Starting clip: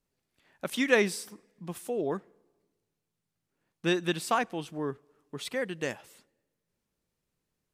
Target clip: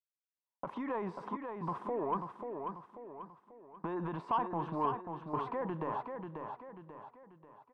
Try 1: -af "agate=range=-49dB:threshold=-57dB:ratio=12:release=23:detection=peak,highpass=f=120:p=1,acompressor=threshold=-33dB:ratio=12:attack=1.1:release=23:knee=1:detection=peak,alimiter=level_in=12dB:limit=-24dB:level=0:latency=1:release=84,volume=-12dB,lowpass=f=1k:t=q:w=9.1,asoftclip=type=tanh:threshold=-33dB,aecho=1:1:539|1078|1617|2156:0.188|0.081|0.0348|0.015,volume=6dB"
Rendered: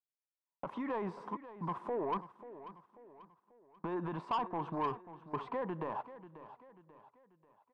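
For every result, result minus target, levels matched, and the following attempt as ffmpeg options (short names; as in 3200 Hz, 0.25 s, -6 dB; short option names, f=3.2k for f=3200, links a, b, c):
compressor: peak gain reduction -6.5 dB; soft clip: distortion +9 dB; echo-to-direct -8.5 dB
-af "agate=range=-49dB:threshold=-57dB:ratio=12:release=23:detection=peak,highpass=f=120:p=1,acompressor=threshold=-40dB:ratio=12:attack=1.1:release=23:knee=1:detection=peak,alimiter=level_in=12dB:limit=-24dB:level=0:latency=1:release=84,volume=-12dB,lowpass=f=1k:t=q:w=9.1,asoftclip=type=tanh:threshold=-33dB,aecho=1:1:539|1078|1617|2156:0.188|0.081|0.0348|0.015,volume=6dB"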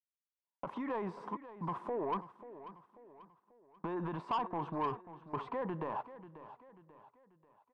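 soft clip: distortion +9 dB; echo-to-direct -8.5 dB
-af "agate=range=-49dB:threshold=-57dB:ratio=12:release=23:detection=peak,highpass=f=120:p=1,acompressor=threshold=-40dB:ratio=12:attack=1.1:release=23:knee=1:detection=peak,alimiter=level_in=12dB:limit=-24dB:level=0:latency=1:release=84,volume=-12dB,lowpass=f=1k:t=q:w=9.1,asoftclip=type=tanh:threshold=-26.5dB,aecho=1:1:539|1078|1617|2156:0.188|0.081|0.0348|0.015,volume=6dB"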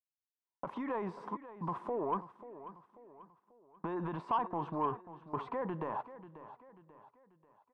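echo-to-direct -8.5 dB
-af "agate=range=-49dB:threshold=-57dB:ratio=12:release=23:detection=peak,highpass=f=120:p=1,acompressor=threshold=-40dB:ratio=12:attack=1.1:release=23:knee=1:detection=peak,alimiter=level_in=12dB:limit=-24dB:level=0:latency=1:release=84,volume=-12dB,lowpass=f=1k:t=q:w=9.1,asoftclip=type=tanh:threshold=-26.5dB,aecho=1:1:539|1078|1617|2156|2695:0.501|0.216|0.0927|0.0398|0.0171,volume=6dB"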